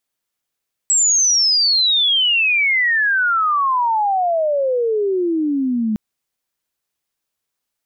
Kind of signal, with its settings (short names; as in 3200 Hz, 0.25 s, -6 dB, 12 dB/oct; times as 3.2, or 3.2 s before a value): chirp logarithmic 7800 Hz -> 210 Hz -11.5 dBFS -> -16 dBFS 5.06 s